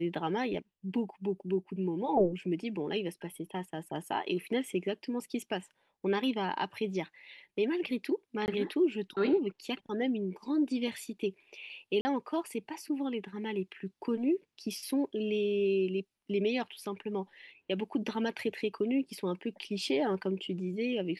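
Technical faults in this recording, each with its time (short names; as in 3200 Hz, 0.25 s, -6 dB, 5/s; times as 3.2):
8.46–8.48 gap 19 ms
12.01–12.05 gap 40 ms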